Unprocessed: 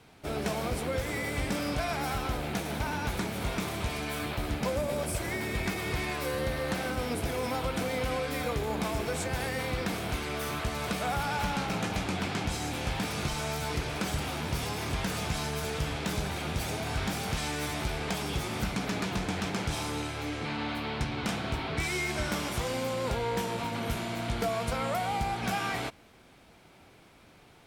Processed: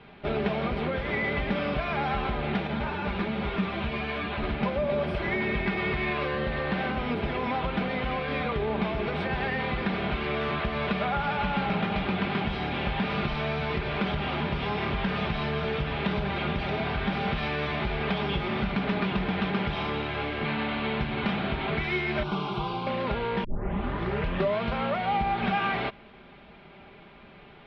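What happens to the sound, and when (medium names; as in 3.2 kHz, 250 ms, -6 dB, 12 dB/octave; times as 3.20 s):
2.67–4.43 s: three-phase chorus
22.23–22.87 s: static phaser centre 370 Hz, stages 8
23.44 s: tape start 1.17 s
whole clip: inverse Chebyshev low-pass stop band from 6.6 kHz, stop band 40 dB; compression, threshold -31 dBFS; comb 5 ms, depth 53%; trim +6 dB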